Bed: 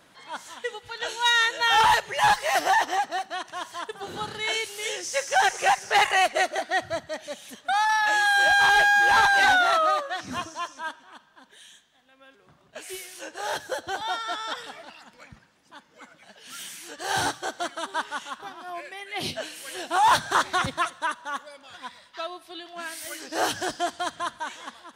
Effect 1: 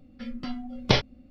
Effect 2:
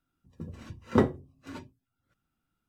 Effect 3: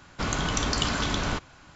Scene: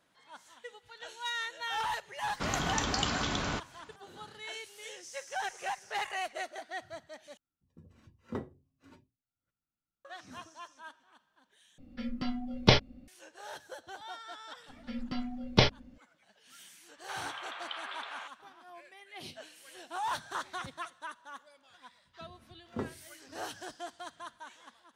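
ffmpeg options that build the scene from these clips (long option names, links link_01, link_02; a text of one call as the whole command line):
ffmpeg -i bed.wav -i cue0.wav -i cue1.wav -i cue2.wav -filter_complex "[3:a]asplit=2[link_01][link_02];[2:a]asplit=2[link_03][link_04];[1:a]asplit=2[link_05][link_06];[0:a]volume=-15dB[link_07];[link_01]highpass=frequency=84:poles=1[link_08];[link_02]highpass=frequency=580:width_type=q:width=0.5412,highpass=frequency=580:width_type=q:width=1.307,lowpass=frequency=3500:width_type=q:width=0.5176,lowpass=frequency=3500:width_type=q:width=0.7071,lowpass=frequency=3500:width_type=q:width=1.932,afreqshift=110[link_09];[link_07]asplit=3[link_10][link_11][link_12];[link_10]atrim=end=7.374[link_13];[link_03]atrim=end=2.68,asetpts=PTS-STARTPTS,volume=-15.5dB[link_14];[link_11]atrim=start=10.046:end=11.784[link_15];[link_05]atrim=end=1.3,asetpts=PTS-STARTPTS,volume=-0.5dB[link_16];[link_12]atrim=start=13.076[link_17];[link_08]atrim=end=1.75,asetpts=PTS-STARTPTS,volume=-4.5dB,afade=type=in:duration=0.004:curve=hsin,afade=type=out:start_time=1.746:duration=0.004:curve=hsin,adelay=2210[link_18];[link_06]atrim=end=1.3,asetpts=PTS-STARTPTS,volume=-2dB,afade=type=in:duration=0.004:curve=hsin,afade=type=out:start_time=1.296:duration=0.004:curve=hsin,adelay=14680[link_19];[link_09]atrim=end=1.75,asetpts=PTS-STARTPTS,volume=-11dB,afade=type=in:duration=0.004:curve=hsin,afade=type=out:start_time=1.746:duration=0.004:curve=hsin,adelay=16890[link_20];[link_04]atrim=end=2.68,asetpts=PTS-STARTPTS,volume=-14.5dB,afade=type=in:duration=0.004:curve=hsin,afade=type=out:start_time=2.676:duration=0.004:curve=hsin,adelay=21810[link_21];[link_13][link_14]acrossfade=duration=0.004:curve1=hsin:curve2=hsin[link_22];[link_22][link_15]acrossfade=duration=0.004:curve1=hsin:curve2=hsin[link_23];[link_23][link_16]acrossfade=duration=0.004:curve1=hsin:curve2=hsin[link_24];[link_24][link_17]acrossfade=duration=0.004:curve1=hsin:curve2=hsin[link_25];[link_25][link_18][link_19][link_20][link_21]amix=inputs=5:normalize=0" out.wav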